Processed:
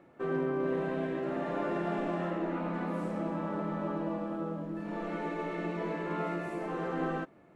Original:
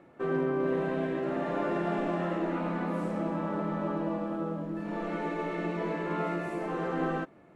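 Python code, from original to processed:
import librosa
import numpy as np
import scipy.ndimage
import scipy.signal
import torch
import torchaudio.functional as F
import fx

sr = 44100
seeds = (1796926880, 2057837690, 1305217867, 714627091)

y = fx.high_shelf(x, sr, hz=4400.0, db=-5.5, at=(2.3, 2.74))
y = y * librosa.db_to_amplitude(-2.5)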